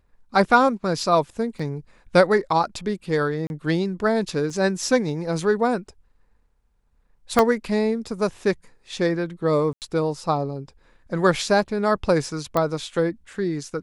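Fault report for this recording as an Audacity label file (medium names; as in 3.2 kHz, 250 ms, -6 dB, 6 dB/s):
1.590000	1.590000	dropout 4.8 ms
3.470000	3.500000	dropout 31 ms
4.500000	4.500000	dropout 2.1 ms
7.390000	7.390000	pop -4 dBFS
9.730000	9.820000	dropout 88 ms
12.570000	12.570000	pop -9 dBFS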